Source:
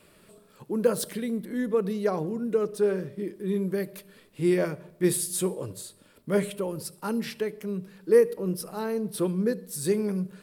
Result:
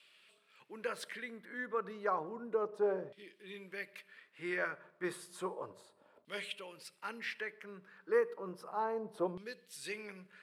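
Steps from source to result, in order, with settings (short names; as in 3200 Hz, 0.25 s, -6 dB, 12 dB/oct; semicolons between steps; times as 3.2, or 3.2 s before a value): LFO band-pass saw down 0.32 Hz 730–3200 Hz; gain +3 dB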